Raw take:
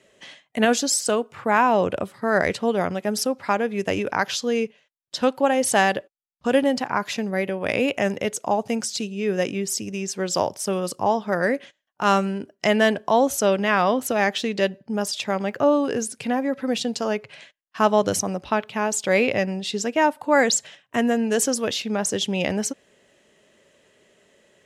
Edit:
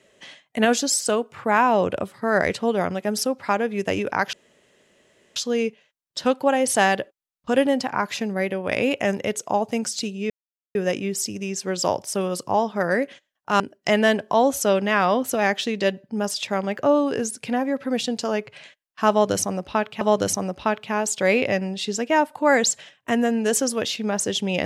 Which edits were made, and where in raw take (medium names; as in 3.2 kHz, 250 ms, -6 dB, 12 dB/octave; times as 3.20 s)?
4.33 s: insert room tone 1.03 s
9.27 s: insert silence 0.45 s
12.12–12.37 s: delete
17.87–18.78 s: loop, 2 plays